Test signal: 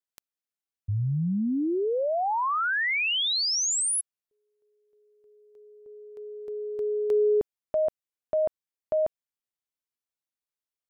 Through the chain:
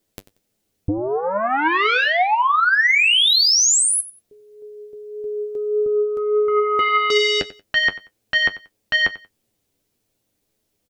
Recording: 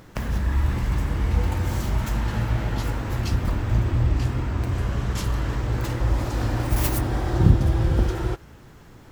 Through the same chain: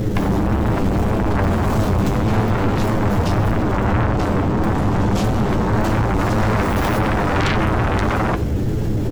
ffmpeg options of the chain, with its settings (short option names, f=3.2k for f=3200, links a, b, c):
-filter_complex "[0:a]acrossover=split=5400[a][b];[b]acompressor=threshold=-41dB:ratio=4:attack=1:release=60[c];[a][c]amix=inputs=2:normalize=0,lowshelf=f=750:t=q:w=1.5:g=13,acontrast=86,aeval=exprs='1*sin(PI/2*3.98*val(0)/1)':c=same,alimiter=limit=-8.5dB:level=0:latency=1:release=13,equalizer=f=510:w=0.88:g=-5.5,flanger=delay=9.2:depth=1.1:regen=44:speed=1.7:shape=sinusoidal,aecho=1:1:92|184:0.133|0.032"